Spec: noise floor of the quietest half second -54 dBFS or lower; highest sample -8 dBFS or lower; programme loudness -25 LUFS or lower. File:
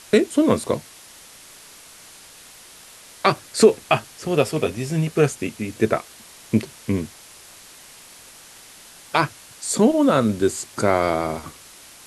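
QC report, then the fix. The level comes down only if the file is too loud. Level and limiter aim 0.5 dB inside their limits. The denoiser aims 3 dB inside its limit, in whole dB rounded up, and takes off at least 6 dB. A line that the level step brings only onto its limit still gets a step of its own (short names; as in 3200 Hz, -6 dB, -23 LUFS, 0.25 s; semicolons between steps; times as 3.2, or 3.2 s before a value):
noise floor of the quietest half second -45 dBFS: fail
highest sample -2.5 dBFS: fail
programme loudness -21.5 LUFS: fail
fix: denoiser 8 dB, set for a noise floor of -45 dBFS; gain -4 dB; limiter -8.5 dBFS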